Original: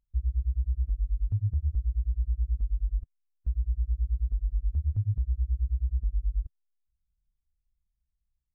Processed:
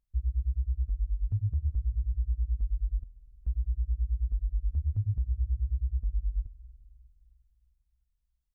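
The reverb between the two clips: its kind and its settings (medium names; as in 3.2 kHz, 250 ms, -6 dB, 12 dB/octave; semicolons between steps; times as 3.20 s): algorithmic reverb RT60 2.7 s, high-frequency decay 0.3×, pre-delay 85 ms, DRR 17.5 dB; trim -1.5 dB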